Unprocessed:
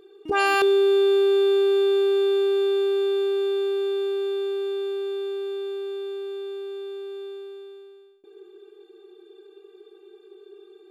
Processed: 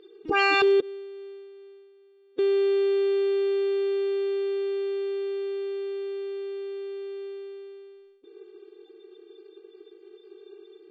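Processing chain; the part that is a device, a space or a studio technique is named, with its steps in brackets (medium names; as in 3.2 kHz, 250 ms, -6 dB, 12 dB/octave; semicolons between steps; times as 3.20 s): 0.80–2.39 s: gate -16 dBFS, range -37 dB; clip after many re-uploads (low-pass 6 kHz 24 dB/octave; coarse spectral quantiser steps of 30 dB)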